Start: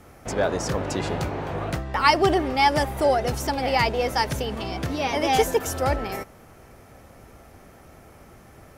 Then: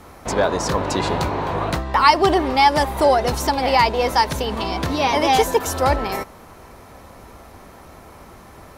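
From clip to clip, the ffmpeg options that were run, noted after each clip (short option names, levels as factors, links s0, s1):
-filter_complex "[0:a]equalizer=f=125:t=o:w=0.33:g=-7,equalizer=f=1000:t=o:w=0.33:g=9,equalizer=f=4000:t=o:w=0.33:g=6,asplit=2[s0][s1];[s1]alimiter=limit=0.224:level=0:latency=1:release=383,volume=1.33[s2];[s0][s2]amix=inputs=2:normalize=0,volume=0.794"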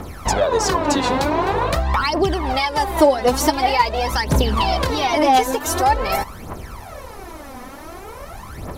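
-af "acompressor=threshold=0.0794:ratio=6,aphaser=in_gain=1:out_gain=1:delay=4.1:decay=0.7:speed=0.46:type=triangular,volume=1.68"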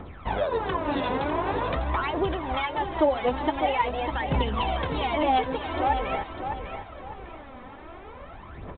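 -af "aecho=1:1:601|1202|1803|2404:0.398|0.123|0.0383|0.0119,aresample=8000,aresample=44100,volume=0.376"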